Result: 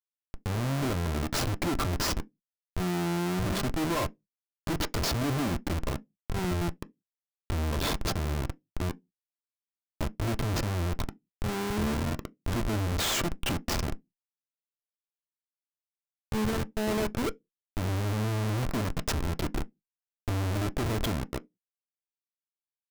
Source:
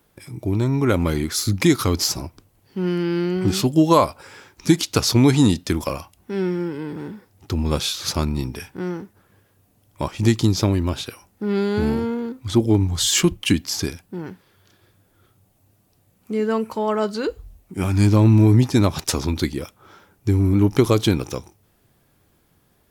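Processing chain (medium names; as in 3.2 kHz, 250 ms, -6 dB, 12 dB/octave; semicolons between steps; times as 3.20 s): bass shelf 68 Hz +6 dB; AM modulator 85 Hz, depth 30%; Schmitt trigger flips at -24 dBFS; on a send: reverberation RT60 0.15 s, pre-delay 3 ms, DRR 10 dB; on the sum: trim -6 dB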